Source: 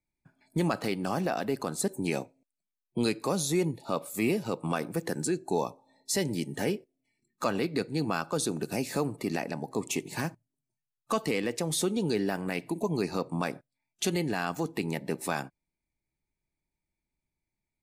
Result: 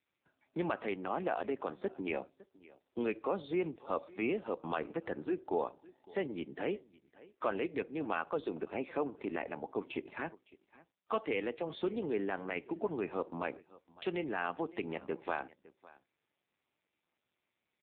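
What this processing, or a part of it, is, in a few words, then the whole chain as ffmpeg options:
satellite phone: -af "highpass=310,lowpass=3.4k,aecho=1:1:558:0.0841,volume=-2.5dB" -ar 8000 -c:a libopencore_amrnb -b:a 5900

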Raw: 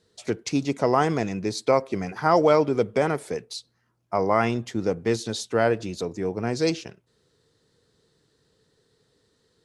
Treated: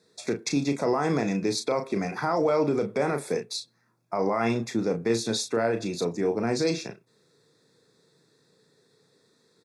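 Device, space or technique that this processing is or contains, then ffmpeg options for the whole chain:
PA system with an anti-feedback notch: -filter_complex "[0:a]highpass=f=130:w=0.5412,highpass=f=130:w=1.3066,asuperstop=centerf=3000:order=20:qfactor=5.8,alimiter=limit=-18.5dB:level=0:latency=1:release=37,asplit=2[a][b];[b]adelay=35,volume=-7.5dB[c];[a][c]amix=inputs=2:normalize=0,volume=2dB"

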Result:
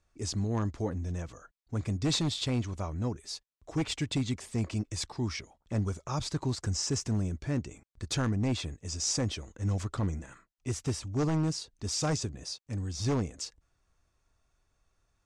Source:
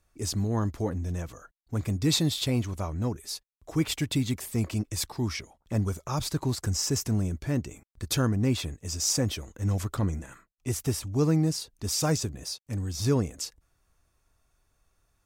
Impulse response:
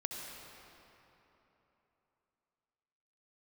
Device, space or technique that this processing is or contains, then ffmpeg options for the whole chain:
synthesiser wavefolder: -filter_complex "[0:a]aeval=exprs='0.112*(abs(mod(val(0)/0.112+3,4)-2)-1)':c=same,lowpass=f=8.1k:w=0.5412,lowpass=f=8.1k:w=1.3066,asettb=1/sr,asplit=3[a][b][c];[a]atrim=end=4.044[d];[b]atrim=start=4.04:end=4.46,asetpts=PTS-STARTPTS,afade=t=in:d=0.004:c=qsin,afade=t=out:st=0.416:d=0.004:c=qsin,lowpass=f=12k:w=0.5412,lowpass=f=12k:w=1.3066[e];[c]atrim=start=4.456[f];[d][e]acrossfade=d=0.004:c1=hsin:c2=qsin[g];[g][f]acrossfade=d=0.004:c1=qsin:c2=hsin,volume=-3dB"

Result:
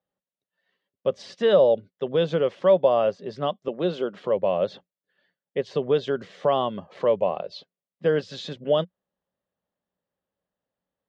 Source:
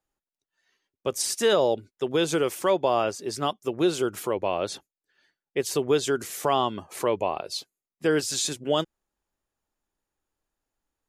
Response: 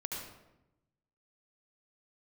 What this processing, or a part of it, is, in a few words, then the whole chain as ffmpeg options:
guitar cabinet: -filter_complex "[0:a]highpass=100,equalizer=f=180:t=q:w=4:g=9,equalizer=f=330:t=q:w=4:g=-8,equalizer=f=550:t=q:w=4:g=9,equalizer=f=880:t=q:w=4:g=-4,equalizer=f=1.4k:t=q:w=4:g=-5,equalizer=f=2.4k:t=q:w=4:g=-8,lowpass=f=3.5k:w=0.5412,lowpass=f=3.5k:w=1.3066,asettb=1/sr,asplit=3[a][b][c];[a]atrim=end=3.684[d];[b]atrim=start=3.68:end=4.25,asetpts=PTS-STARTPTS,afade=t=in:d=0.004:c=qsin,afade=t=out:st=0.566:d=0.004:c=qsin,highpass=f=170:w=0.5412,highpass=f=170:w=1.3066[e];[c]atrim=start=4.246[f];[d][e]acrossfade=d=0.004:c1=hsin:c2=qsin[g];[g][f]acrossfade=d=0.004:c1=qsin:c2=hsin"

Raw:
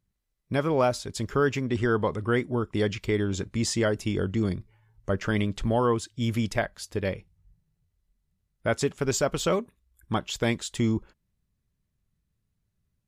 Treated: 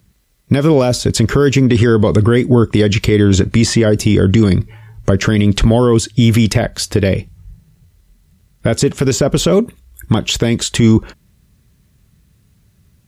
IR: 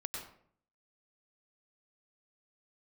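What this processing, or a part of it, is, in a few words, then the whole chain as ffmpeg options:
mastering chain: -filter_complex "[0:a]highpass=41,equalizer=f=830:t=o:w=1.6:g=-3,acrossover=split=620|2700[a][b][c];[a]acompressor=threshold=-26dB:ratio=4[d];[b]acompressor=threshold=-44dB:ratio=4[e];[c]acompressor=threshold=-44dB:ratio=4[f];[d][e][f]amix=inputs=3:normalize=0,acompressor=threshold=-31dB:ratio=2.5,alimiter=level_in=26dB:limit=-1dB:release=50:level=0:latency=1,volume=-1dB"

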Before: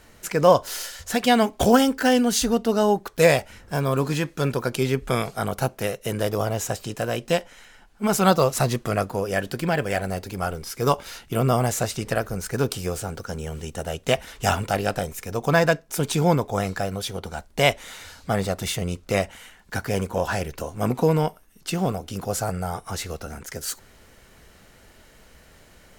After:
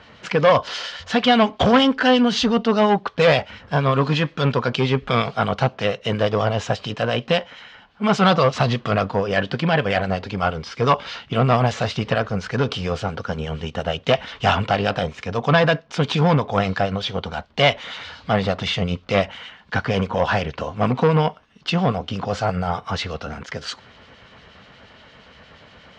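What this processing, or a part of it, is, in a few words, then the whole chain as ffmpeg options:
guitar amplifier with harmonic tremolo: -filter_complex "[0:a]equalizer=f=12k:t=o:w=0.39:g=-7.5,acrossover=split=2300[a][b];[a]aeval=exprs='val(0)*(1-0.5/2+0.5/2*cos(2*PI*8.5*n/s))':c=same[c];[b]aeval=exprs='val(0)*(1-0.5/2-0.5/2*cos(2*PI*8.5*n/s))':c=same[d];[c][d]amix=inputs=2:normalize=0,asoftclip=type=tanh:threshold=-18dB,highpass=88,equalizer=f=350:t=q:w=4:g=-8,equalizer=f=1.1k:t=q:w=4:g=4,equalizer=f=3.1k:t=q:w=4:g=5,lowpass=f=4.5k:w=0.5412,lowpass=f=4.5k:w=1.3066,volume=9dB"

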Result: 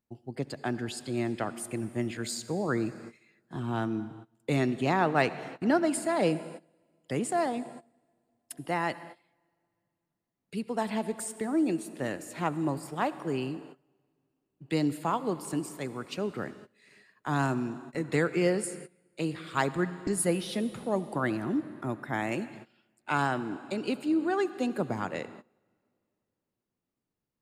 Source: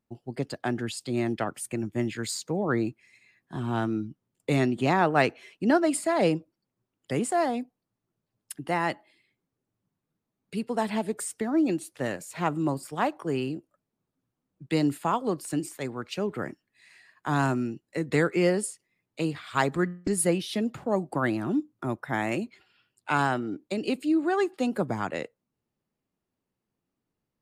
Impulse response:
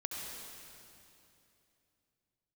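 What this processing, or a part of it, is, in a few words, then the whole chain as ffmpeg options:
keyed gated reverb: -filter_complex "[0:a]asplit=3[a][b][c];[1:a]atrim=start_sample=2205[d];[b][d]afir=irnorm=-1:irlink=0[e];[c]apad=whole_len=1209184[f];[e][f]sidechaingate=range=-21dB:threshold=-53dB:ratio=16:detection=peak,volume=-11.5dB[g];[a][g]amix=inputs=2:normalize=0,volume=-4.5dB"

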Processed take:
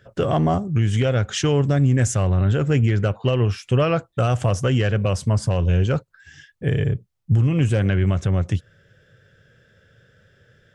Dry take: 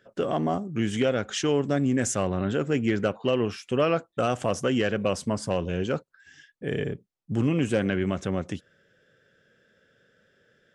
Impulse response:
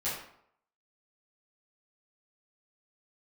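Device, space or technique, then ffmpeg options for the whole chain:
car stereo with a boomy subwoofer: -af "lowshelf=f=160:t=q:w=1.5:g=11.5,alimiter=limit=-16dB:level=0:latency=1:release=355,volume=6dB"

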